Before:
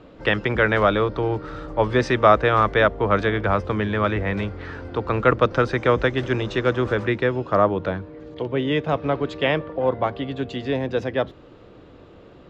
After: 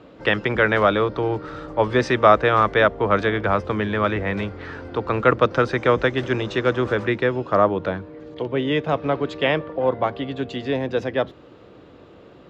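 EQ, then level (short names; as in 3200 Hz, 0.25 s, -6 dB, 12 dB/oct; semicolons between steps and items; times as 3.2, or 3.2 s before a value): HPF 110 Hz 6 dB/oct; +1.0 dB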